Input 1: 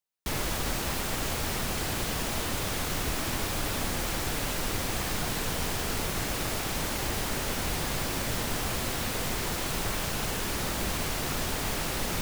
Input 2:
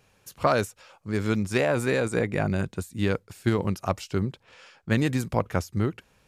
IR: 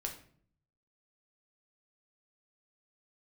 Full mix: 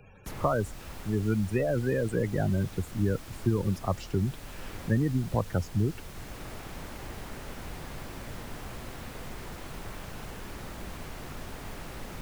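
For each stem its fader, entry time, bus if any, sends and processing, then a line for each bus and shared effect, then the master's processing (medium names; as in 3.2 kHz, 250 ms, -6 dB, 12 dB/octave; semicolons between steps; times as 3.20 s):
-17.0 dB, 0.00 s, no send, none
-3.5 dB, 0.00 s, no send, spectral gate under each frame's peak -15 dB strong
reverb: none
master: bass shelf 110 Hz +8.5 dB; three bands compressed up and down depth 40%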